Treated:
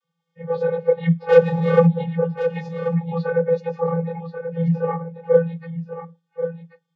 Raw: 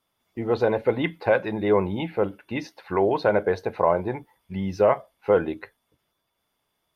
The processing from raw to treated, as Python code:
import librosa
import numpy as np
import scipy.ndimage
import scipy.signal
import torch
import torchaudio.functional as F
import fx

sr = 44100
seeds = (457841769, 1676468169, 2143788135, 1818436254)

p1 = fx.phase_scramble(x, sr, seeds[0], window_ms=50)
p2 = fx.leveller(p1, sr, passes=3, at=(1.28, 1.86))
p3 = fx.spec_box(p2, sr, start_s=2.71, length_s=0.39, low_hz=290.0, high_hz=1800.0, gain_db=-15)
p4 = fx.lowpass(p3, sr, hz=2900.0, slope=12, at=(4.61, 5.43))
p5 = fx.level_steps(p4, sr, step_db=14)
p6 = p4 + (p5 * librosa.db_to_amplitude(-0.5))
p7 = fx.quant_dither(p6, sr, seeds[1], bits=12, dither='none')
p8 = fx.vocoder(p7, sr, bands=32, carrier='square', carrier_hz=167.0)
p9 = p8 + fx.echo_single(p8, sr, ms=1085, db=-10.0, dry=0)
y = p9 * librosa.db_to_amplitude(-1.0)